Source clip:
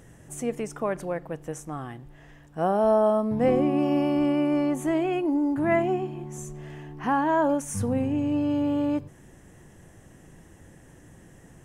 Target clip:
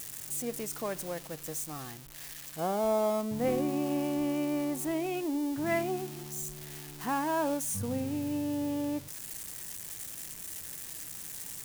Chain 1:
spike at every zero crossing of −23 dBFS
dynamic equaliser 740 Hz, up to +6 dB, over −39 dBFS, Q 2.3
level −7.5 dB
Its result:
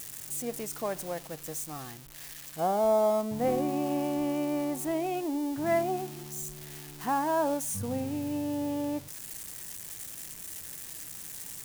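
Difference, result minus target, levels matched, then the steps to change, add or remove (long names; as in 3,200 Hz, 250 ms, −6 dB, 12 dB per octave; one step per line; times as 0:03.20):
2,000 Hz band −3.0 dB
change: dynamic equaliser 2,500 Hz, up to +6 dB, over −39 dBFS, Q 2.3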